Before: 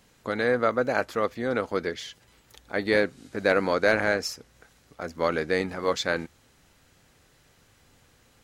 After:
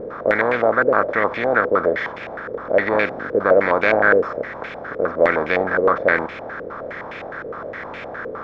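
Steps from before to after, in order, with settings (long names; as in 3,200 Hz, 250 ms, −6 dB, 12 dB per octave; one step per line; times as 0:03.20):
compressor on every frequency bin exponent 0.4
pitch vibrato 1.4 Hz 20 cents
low-pass on a step sequencer 9.7 Hz 470–2,500 Hz
level −2 dB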